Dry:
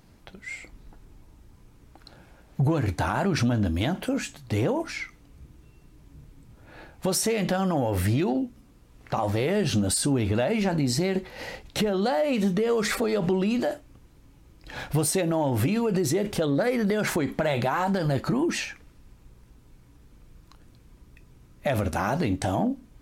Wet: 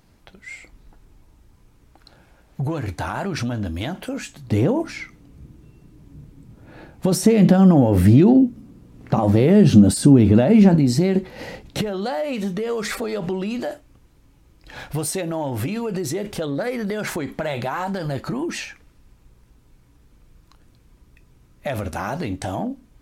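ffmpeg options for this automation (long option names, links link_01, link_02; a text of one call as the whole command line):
ffmpeg -i in.wav -af "asetnsamples=nb_out_samples=441:pad=0,asendcmd='4.36 equalizer g 9;7.12 equalizer g 15;10.75 equalizer g 9;11.81 equalizer g -1.5',equalizer=frequency=200:width_type=o:width=2.6:gain=-2" out.wav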